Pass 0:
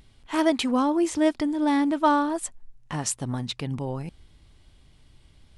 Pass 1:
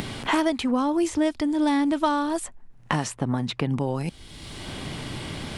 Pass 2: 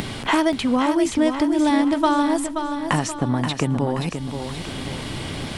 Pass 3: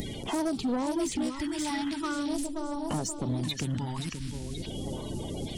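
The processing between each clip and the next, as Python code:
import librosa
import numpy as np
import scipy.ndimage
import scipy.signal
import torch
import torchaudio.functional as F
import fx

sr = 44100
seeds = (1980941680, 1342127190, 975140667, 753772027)

y1 = fx.band_squash(x, sr, depth_pct=100)
y2 = fx.echo_feedback(y1, sr, ms=528, feedback_pct=46, wet_db=-7.5)
y2 = F.gain(torch.from_numpy(y2), 3.5).numpy()
y3 = fx.spec_quant(y2, sr, step_db=30)
y3 = fx.phaser_stages(y3, sr, stages=2, low_hz=510.0, high_hz=1900.0, hz=0.44, feedback_pct=25)
y3 = 10.0 ** (-20.5 / 20.0) * np.tanh(y3 / 10.0 ** (-20.5 / 20.0))
y3 = F.gain(torch.from_numpy(y3), -3.5).numpy()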